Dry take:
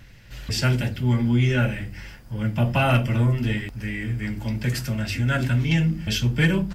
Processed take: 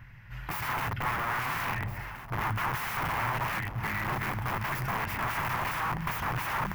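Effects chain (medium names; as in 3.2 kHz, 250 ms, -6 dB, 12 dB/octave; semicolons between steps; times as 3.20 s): integer overflow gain 24 dB; ten-band graphic EQ 125 Hz +8 dB, 250 Hz -4 dB, 500 Hz -8 dB, 1 kHz +11 dB, 2 kHz +6 dB, 4 kHz -9 dB, 8 kHz -12 dB; echo whose repeats swap between lows and highs 685 ms, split 830 Hz, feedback 65%, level -9 dB; trim -5.5 dB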